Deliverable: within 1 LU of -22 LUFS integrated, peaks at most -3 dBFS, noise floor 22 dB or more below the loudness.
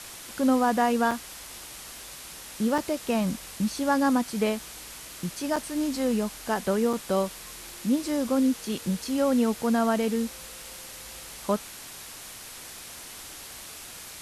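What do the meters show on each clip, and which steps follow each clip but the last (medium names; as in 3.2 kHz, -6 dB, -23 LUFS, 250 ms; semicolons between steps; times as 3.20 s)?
dropouts 4; longest dropout 4.6 ms; noise floor -43 dBFS; noise floor target -49 dBFS; loudness -27.0 LUFS; peak level -11.5 dBFS; loudness target -22.0 LUFS
-> interpolate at 1.11/2.78/5.56/6.93 s, 4.6 ms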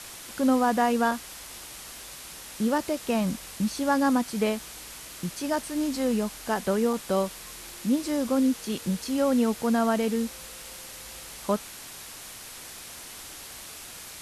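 dropouts 0; noise floor -43 dBFS; noise floor target -49 dBFS
-> noise reduction 6 dB, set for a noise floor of -43 dBFS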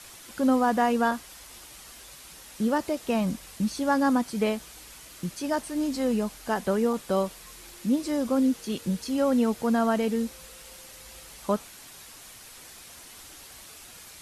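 noise floor -47 dBFS; noise floor target -49 dBFS
-> noise reduction 6 dB, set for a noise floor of -47 dBFS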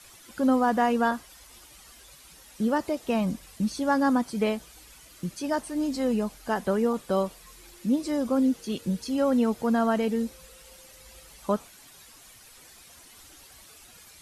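noise floor -52 dBFS; loudness -27.0 LUFS; peak level -12.0 dBFS; loudness target -22.0 LUFS
-> trim +5 dB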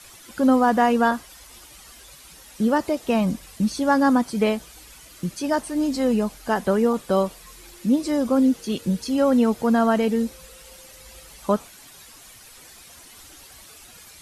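loudness -22.0 LUFS; peak level -7.0 dBFS; noise floor -47 dBFS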